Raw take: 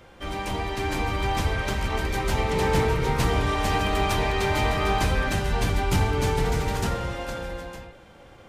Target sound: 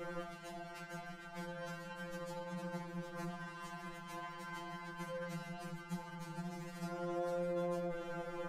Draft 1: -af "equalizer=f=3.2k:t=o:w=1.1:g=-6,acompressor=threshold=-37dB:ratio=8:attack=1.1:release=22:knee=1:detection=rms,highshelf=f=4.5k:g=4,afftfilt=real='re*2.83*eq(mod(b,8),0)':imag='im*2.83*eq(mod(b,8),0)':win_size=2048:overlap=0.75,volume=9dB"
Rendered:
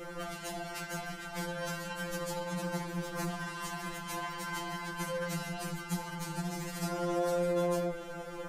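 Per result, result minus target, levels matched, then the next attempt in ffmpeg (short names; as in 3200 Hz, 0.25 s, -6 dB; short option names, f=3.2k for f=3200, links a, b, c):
8000 Hz band +7.5 dB; compressor: peak gain reduction -7.5 dB
-af "equalizer=f=3.2k:t=o:w=1.1:g=-6,acompressor=threshold=-37dB:ratio=8:attack=1.1:release=22:knee=1:detection=rms,highshelf=f=4.5k:g=-7,afftfilt=real='re*2.83*eq(mod(b,8),0)':imag='im*2.83*eq(mod(b,8),0)':win_size=2048:overlap=0.75,volume=9dB"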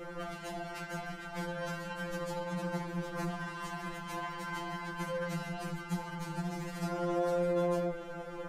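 compressor: peak gain reduction -7.5 dB
-af "equalizer=f=3.2k:t=o:w=1.1:g=-6,acompressor=threshold=-45.5dB:ratio=8:attack=1.1:release=22:knee=1:detection=rms,highshelf=f=4.5k:g=-7,afftfilt=real='re*2.83*eq(mod(b,8),0)':imag='im*2.83*eq(mod(b,8),0)':win_size=2048:overlap=0.75,volume=9dB"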